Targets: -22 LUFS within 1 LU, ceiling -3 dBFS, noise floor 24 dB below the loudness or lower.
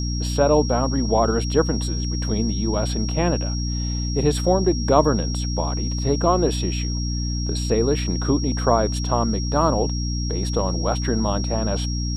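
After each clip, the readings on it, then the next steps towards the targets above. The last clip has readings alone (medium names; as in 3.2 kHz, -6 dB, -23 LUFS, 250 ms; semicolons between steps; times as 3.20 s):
hum 60 Hz; highest harmonic 300 Hz; hum level -22 dBFS; steady tone 5.6 kHz; tone level -31 dBFS; loudness -22.0 LUFS; peak level -2.0 dBFS; loudness target -22.0 LUFS
-> de-hum 60 Hz, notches 5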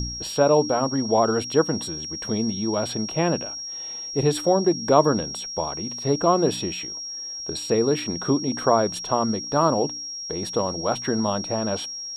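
hum not found; steady tone 5.6 kHz; tone level -31 dBFS
-> band-stop 5.6 kHz, Q 30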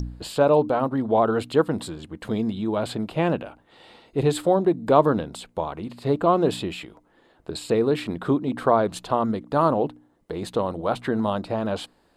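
steady tone not found; loudness -23.5 LUFS; peak level -3.0 dBFS; loudness target -22.0 LUFS
-> trim +1.5 dB; peak limiter -3 dBFS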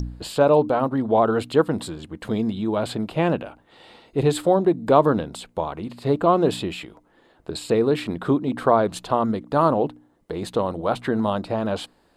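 loudness -22.5 LUFS; peak level -3.0 dBFS; noise floor -60 dBFS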